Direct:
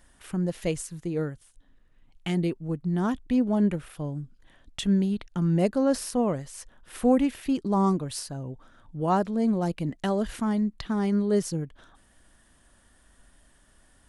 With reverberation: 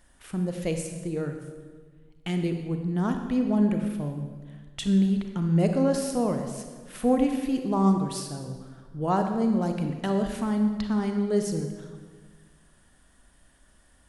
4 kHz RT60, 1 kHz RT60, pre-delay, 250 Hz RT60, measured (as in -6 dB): 1.1 s, 1.4 s, 33 ms, 1.7 s